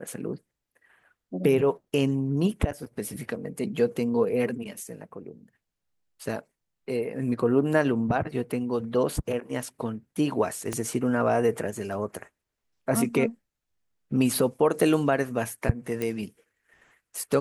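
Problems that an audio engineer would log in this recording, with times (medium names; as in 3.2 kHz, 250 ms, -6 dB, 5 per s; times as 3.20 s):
10.73 s: pop -15 dBFS
16.02 s: pop -16 dBFS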